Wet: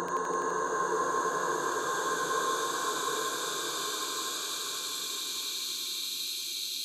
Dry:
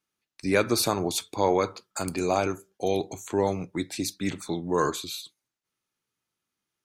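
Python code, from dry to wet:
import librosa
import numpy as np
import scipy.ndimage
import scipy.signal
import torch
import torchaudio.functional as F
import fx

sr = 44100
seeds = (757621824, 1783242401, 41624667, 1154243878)

y = fx.paulstretch(x, sr, seeds[0], factor=16.0, window_s=0.5, from_s=4.73)
y = fx.highpass(y, sr, hz=900.0, slope=6)
y = fx.echo_wet_highpass(y, sr, ms=84, feedback_pct=82, hz=1400.0, wet_db=-3.5)
y = y * librosa.db_to_amplitude(-2.0)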